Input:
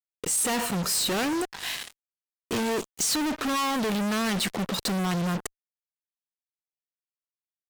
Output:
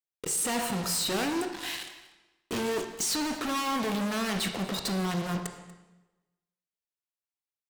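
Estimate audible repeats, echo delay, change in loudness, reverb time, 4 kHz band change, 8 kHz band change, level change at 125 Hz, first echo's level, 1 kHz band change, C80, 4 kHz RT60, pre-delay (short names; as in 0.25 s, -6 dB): 1, 0.239 s, -3.0 dB, 1.1 s, -3.0 dB, -3.5 dB, -3.5 dB, -18.5 dB, -2.5 dB, 9.5 dB, 0.95 s, 18 ms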